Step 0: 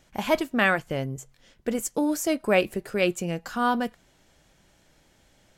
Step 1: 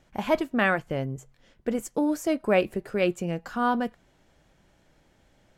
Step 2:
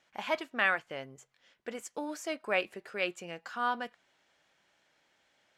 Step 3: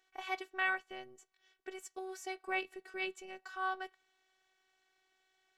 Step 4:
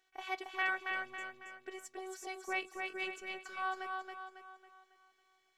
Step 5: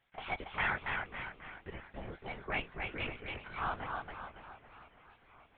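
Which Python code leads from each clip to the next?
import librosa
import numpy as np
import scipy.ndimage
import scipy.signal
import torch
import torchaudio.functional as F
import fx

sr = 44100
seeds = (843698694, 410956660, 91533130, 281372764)

y1 = fx.high_shelf(x, sr, hz=3000.0, db=-9.5)
y2 = fx.bandpass_q(y1, sr, hz=2800.0, q=0.53)
y2 = y2 * librosa.db_to_amplitude(-1.0)
y3 = fx.robotise(y2, sr, hz=376.0)
y3 = y3 * librosa.db_to_amplitude(-3.0)
y4 = fx.echo_feedback(y3, sr, ms=275, feedback_pct=45, wet_db=-4)
y4 = y4 * librosa.db_to_amplitude(-1.0)
y5 = fx.lpc_vocoder(y4, sr, seeds[0], excitation='whisper', order=10)
y5 = fx.echo_warbled(y5, sr, ms=572, feedback_pct=66, rate_hz=2.8, cents=217, wet_db=-19.5)
y5 = y5 * librosa.db_to_amplitude(1.0)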